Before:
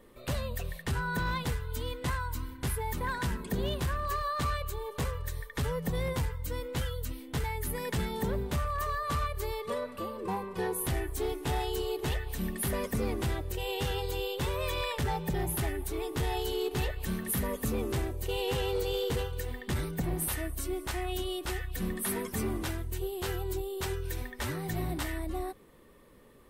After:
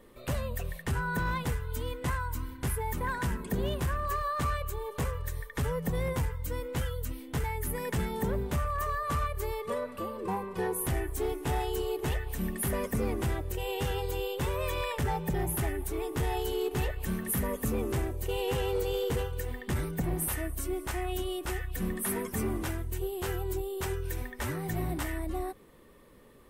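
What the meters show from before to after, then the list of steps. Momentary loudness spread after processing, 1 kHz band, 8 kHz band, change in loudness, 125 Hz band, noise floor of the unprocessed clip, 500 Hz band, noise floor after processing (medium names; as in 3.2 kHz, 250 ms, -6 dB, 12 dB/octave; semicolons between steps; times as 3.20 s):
5 LU, +1.0 dB, +0.5 dB, +0.5 dB, +1.0 dB, -49 dBFS, +1.0 dB, -48 dBFS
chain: dynamic bell 4.1 kHz, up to -7 dB, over -57 dBFS, Q 1.6; trim +1 dB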